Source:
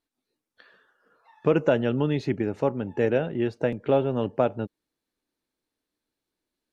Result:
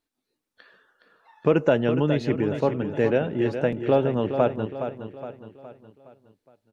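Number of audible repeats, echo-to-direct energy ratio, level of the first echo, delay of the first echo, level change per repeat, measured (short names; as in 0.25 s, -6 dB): 4, -8.0 dB, -9.0 dB, 0.416 s, -6.5 dB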